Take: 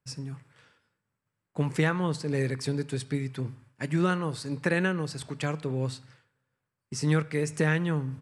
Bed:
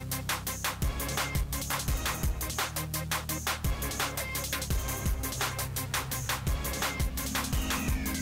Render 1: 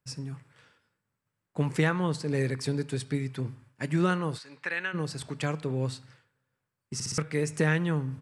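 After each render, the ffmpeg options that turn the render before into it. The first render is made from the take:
-filter_complex "[0:a]asplit=3[a][b][c];[a]afade=t=out:st=4.37:d=0.02[d];[b]bandpass=f=2.2k:t=q:w=0.97,afade=t=in:st=4.37:d=0.02,afade=t=out:st=4.93:d=0.02[e];[c]afade=t=in:st=4.93:d=0.02[f];[d][e][f]amix=inputs=3:normalize=0,asplit=5[g][h][i][j][k];[g]atrim=end=7.002[l];[h]atrim=start=6.938:end=7.002[m];[i]atrim=start=6.938:end=7.002[n];[j]atrim=start=6.938:end=7.002[o];[k]atrim=start=7.178[p];[l][m]acrossfade=d=0.004:c1=hsin:c2=hsin[q];[q][n]acrossfade=d=0.004:c1=hsin:c2=hsin[r];[r][o]acrossfade=d=0.004:c1=hsin:c2=hsin[s];[s][p]acrossfade=d=0.004:c1=hsin:c2=hsin"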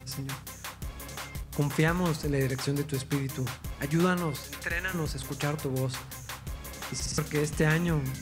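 -filter_complex "[1:a]volume=-8dB[a];[0:a][a]amix=inputs=2:normalize=0"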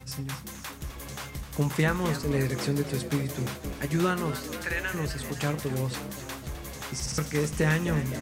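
-filter_complex "[0:a]asplit=2[a][b];[b]adelay=14,volume=-11.5dB[c];[a][c]amix=inputs=2:normalize=0,asplit=2[d][e];[e]asplit=7[f][g][h][i][j][k][l];[f]adelay=258,afreqshift=70,volume=-12dB[m];[g]adelay=516,afreqshift=140,volume=-16.2dB[n];[h]adelay=774,afreqshift=210,volume=-20.3dB[o];[i]adelay=1032,afreqshift=280,volume=-24.5dB[p];[j]adelay=1290,afreqshift=350,volume=-28.6dB[q];[k]adelay=1548,afreqshift=420,volume=-32.8dB[r];[l]adelay=1806,afreqshift=490,volume=-36.9dB[s];[m][n][o][p][q][r][s]amix=inputs=7:normalize=0[t];[d][t]amix=inputs=2:normalize=0"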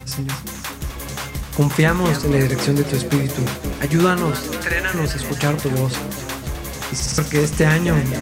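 -af "volume=10dB,alimiter=limit=-3dB:level=0:latency=1"

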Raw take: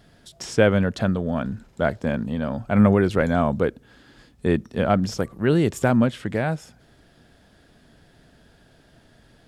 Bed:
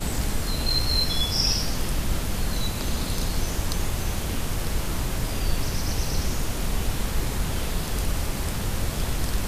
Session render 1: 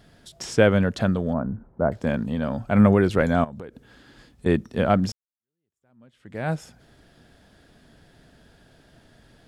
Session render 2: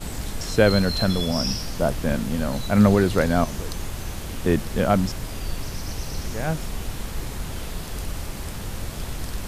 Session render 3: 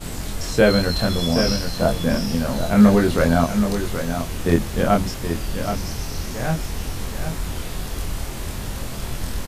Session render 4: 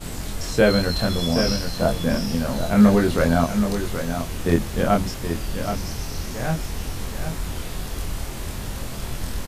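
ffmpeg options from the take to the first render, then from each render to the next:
-filter_complex "[0:a]asettb=1/sr,asplit=3[a][b][c];[a]atrim=end=1.334[d];[b]atrim=start=1.33:end=1.92,asetpts=PTS-STARTPTS,afade=t=in:d=0.004:c=qsin,afade=t=out:st=0.586:d=0.004:c=qsin,lowpass=f=1.2k:w=0.5412,lowpass=f=1.2k:w=1.3066[e];[c]atrim=start=1.916[f];[d][e]acrossfade=d=0.004:c1=hsin:c2=qsin[g];[g][f]acrossfade=d=0.004:c1=qsin:c2=hsin,asettb=1/sr,asplit=3[h][i][j];[h]atrim=end=3.444[k];[i]atrim=start=3.44:end=4.46,asetpts=PTS-STARTPTS,afade=t=in:d=0.004:c=qsin,afade=t=out:st=1.016:d=0.004:c=qsin,acompressor=threshold=-33dB:ratio=12:attack=3.2:release=140:knee=1:detection=peak[l];[j]atrim=start=4.456[m];[k][l]acrossfade=d=0.004:c1=hsin:c2=qsin[n];[n][m]acrossfade=d=0.004:c1=qsin:c2=hsin,asplit=2[o][p];[o]atrim=end=5.12,asetpts=PTS-STARTPTS,afade=t=out:st=5.116:d=0.004:c=hsin[q];[p]atrim=start=5.12,asetpts=PTS-STARTPTS,afade=t=in:d=1.38:c=exp[r];[q][r]concat=n=2:v=0:a=1"
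-filter_complex "[1:a]volume=-4.5dB[a];[0:a][a]amix=inputs=2:normalize=0"
-filter_complex "[0:a]asplit=2[a][b];[b]adelay=24,volume=-2dB[c];[a][c]amix=inputs=2:normalize=0,aecho=1:1:775:0.398"
-af "volume=-1.5dB"

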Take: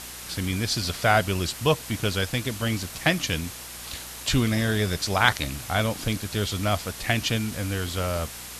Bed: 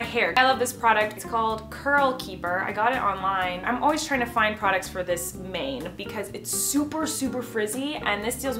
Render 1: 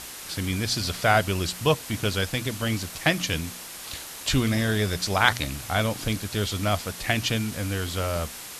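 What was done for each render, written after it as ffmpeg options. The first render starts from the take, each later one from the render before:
-af "bandreject=f=60:t=h:w=4,bandreject=f=120:t=h:w=4,bandreject=f=180:t=h:w=4,bandreject=f=240:t=h:w=4"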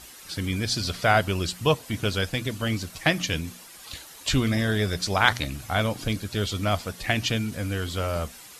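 -af "afftdn=nr=10:nf=-40"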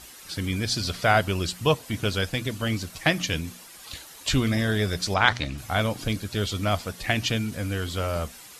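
-filter_complex "[0:a]asettb=1/sr,asplit=3[a][b][c];[a]atrim=end=5.144[d];[b]atrim=start=5.14:end=5.58,asetpts=PTS-STARTPTS,afade=t=in:d=0.004:c=qsin,afade=t=out:st=0.436:d=0.004:c=qsin,lowpass=5.8k[e];[c]atrim=start=5.576[f];[d][e]acrossfade=d=0.004:c1=hsin:c2=qsin[g];[g][f]acrossfade=d=0.004:c1=qsin:c2=hsin"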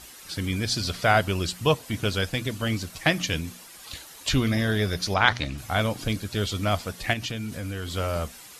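-filter_complex "[0:a]asettb=1/sr,asplit=3[a][b][c];[a]atrim=end=4.294[d];[b]atrim=start=4.29:end=5.38,asetpts=PTS-STARTPTS,afade=t=in:d=0.004:c=qsin,afade=t=out:st=1.086:d=0.004:c=qsin,equalizer=f=7.8k:w=7.7:g=-11.5[e];[c]atrim=start=5.376[f];[d][e]acrossfade=d=0.004:c1=hsin:c2=qsin[g];[g][f]acrossfade=d=0.004:c1=qsin:c2=hsin,asettb=1/sr,asplit=3[h][i][j];[h]atrim=end=7.134[k];[i]atrim=start=7.13:end=7.93,asetpts=PTS-STARTPTS,afade=t=in:d=0.004:c=qsin,afade=t=out:st=0.796:d=0.004:c=qsin,acompressor=threshold=-29dB:ratio=3:attack=3.2:release=140:knee=1:detection=peak[l];[j]atrim=start=7.926[m];[k][l]acrossfade=d=0.004:c1=hsin:c2=qsin[n];[n][m]acrossfade=d=0.004:c1=qsin:c2=hsin"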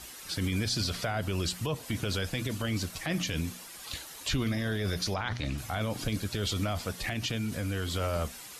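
-filter_complex "[0:a]acrossover=split=380[a][b];[b]acompressor=threshold=-24dB:ratio=2.5[c];[a][c]amix=inputs=2:normalize=0,alimiter=limit=-21dB:level=0:latency=1:release=28"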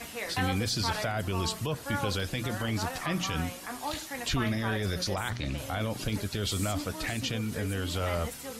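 -filter_complex "[1:a]volume=-14dB[a];[0:a][a]amix=inputs=2:normalize=0"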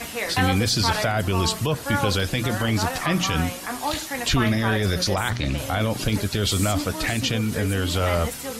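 -af "volume=8.5dB"

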